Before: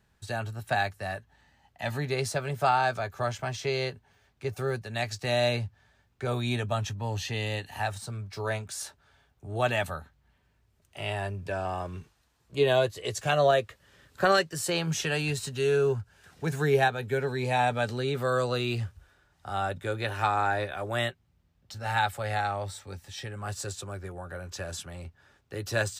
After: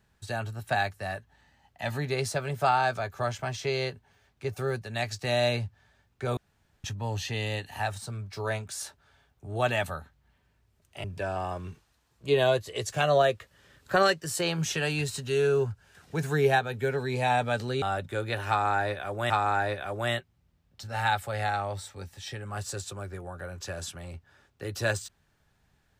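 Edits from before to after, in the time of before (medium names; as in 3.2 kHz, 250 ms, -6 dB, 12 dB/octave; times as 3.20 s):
6.37–6.84 s: room tone
11.04–11.33 s: delete
18.11–19.54 s: delete
20.21–21.02 s: loop, 2 plays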